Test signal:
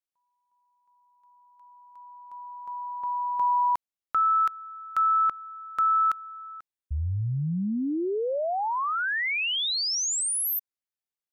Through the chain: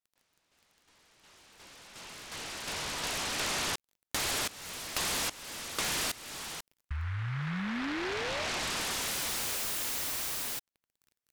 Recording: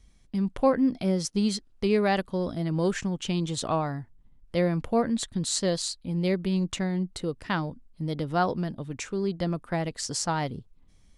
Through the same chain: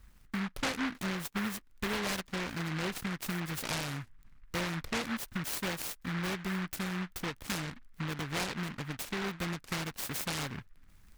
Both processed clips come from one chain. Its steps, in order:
downward compressor 3 to 1, threshold −35 dBFS
surface crackle 24 per second −50 dBFS
short delay modulated by noise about 1,500 Hz, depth 0.38 ms

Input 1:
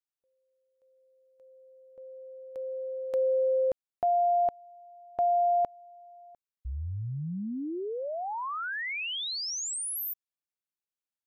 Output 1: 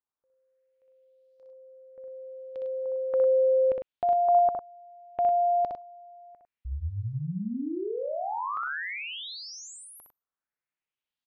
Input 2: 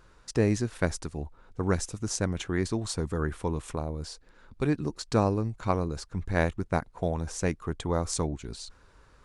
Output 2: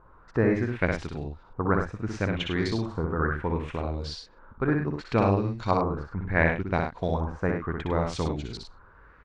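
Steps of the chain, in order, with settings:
auto-filter low-pass saw up 0.7 Hz 960–5,000 Hz
loudspeakers that aren't time-aligned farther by 21 metres −4 dB, 35 metres −8 dB

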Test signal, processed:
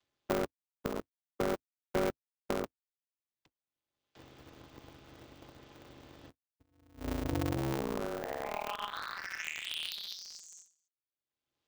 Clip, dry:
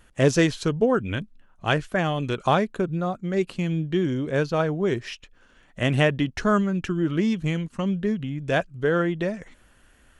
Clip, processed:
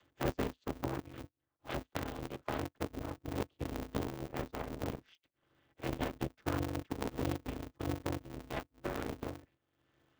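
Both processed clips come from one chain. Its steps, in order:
channel vocoder with a chord as carrier minor triad, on D#3
upward compression, threshold −42 dBFS
Bessel low-pass filter 5,200 Hz, order 4
harmonic generator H 7 −18 dB, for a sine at −6.5 dBFS
bass and treble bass +2 dB, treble +5 dB
downward compressor 2.5 to 1, threshold −36 dBFS
high-pass filter 170 Hz 24 dB per octave
parametric band 3,300 Hz +6.5 dB 0.61 octaves
ring modulator with a square carrier 100 Hz

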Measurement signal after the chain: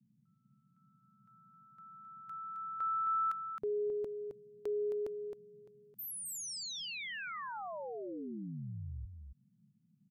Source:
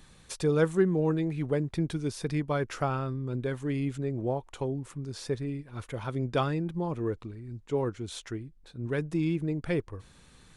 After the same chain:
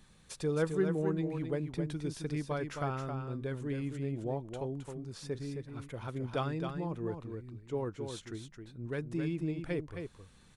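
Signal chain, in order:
single-tap delay 266 ms −6.5 dB
noise in a band 120–220 Hz −64 dBFS
level −6.5 dB

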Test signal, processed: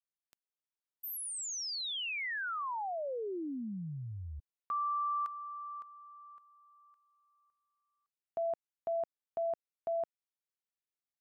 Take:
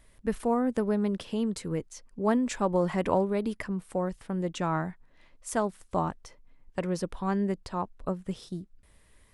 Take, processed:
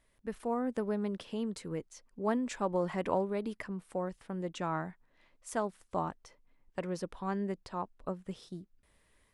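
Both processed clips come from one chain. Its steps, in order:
high-shelf EQ 6,100 Hz −4.5 dB
automatic gain control gain up to 4 dB
low-shelf EQ 160 Hz −7 dB
level −8.5 dB

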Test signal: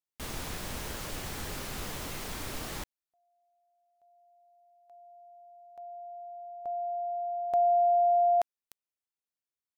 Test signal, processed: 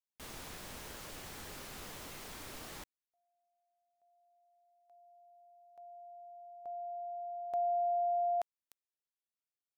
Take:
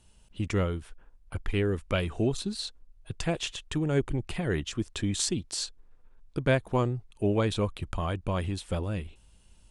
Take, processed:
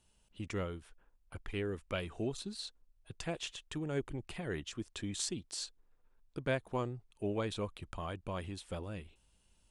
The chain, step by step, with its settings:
low-shelf EQ 180 Hz −6 dB
level −8 dB

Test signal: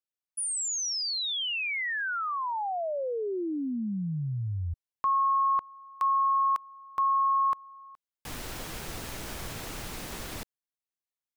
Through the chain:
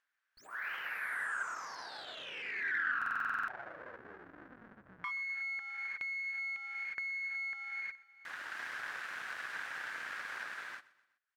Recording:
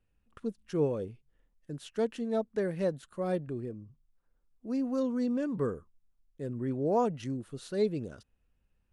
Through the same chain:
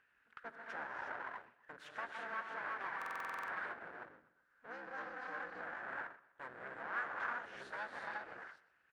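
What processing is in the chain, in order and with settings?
sub-octave generator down 2 octaves, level −6 dB
reverb whose tail is shaped and stops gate 390 ms rising, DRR −1.5 dB
full-wave rectification
downward compressor, threshold −31 dBFS
resonant band-pass 1,600 Hz, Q 4.7
on a send: repeating echo 125 ms, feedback 36%, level −20 dB
on the sum: upward compression 1.5 to 1, threshold −58 dBFS
buffer that repeats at 0:02.97, samples 2,048, times 10
level +10.5 dB

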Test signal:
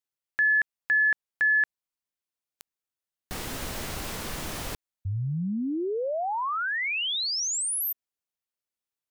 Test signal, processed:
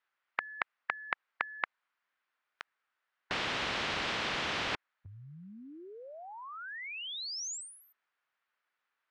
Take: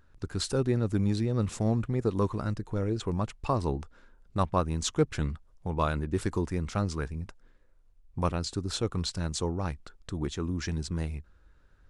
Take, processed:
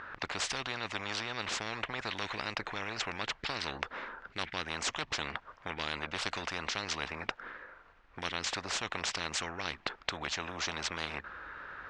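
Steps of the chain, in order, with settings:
resonant band-pass 1,500 Hz, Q 1.8
high-frequency loss of the air 140 metres
every bin compressed towards the loudest bin 10 to 1
level +8.5 dB

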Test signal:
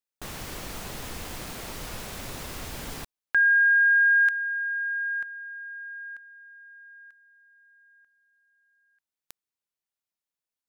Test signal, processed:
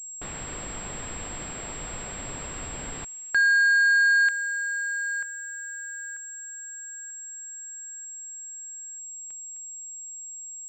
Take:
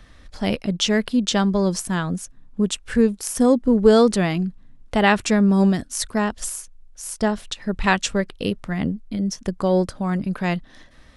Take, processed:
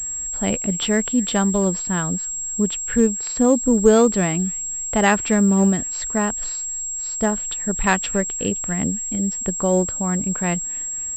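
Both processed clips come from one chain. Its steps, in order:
delay with a high-pass on its return 259 ms, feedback 48%, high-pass 2,300 Hz, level −20 dB
switching amplifier with a slow clock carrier 7,600 Hz

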